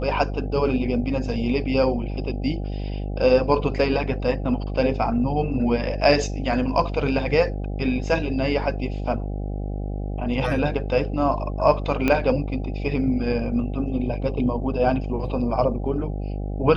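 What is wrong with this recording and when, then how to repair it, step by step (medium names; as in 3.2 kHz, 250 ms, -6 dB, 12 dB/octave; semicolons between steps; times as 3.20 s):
buzz 50 Hz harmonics 16 -28 dBFS
12.08 s: pop -8 dBFS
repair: de-click; de-hum 50 Hz, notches 16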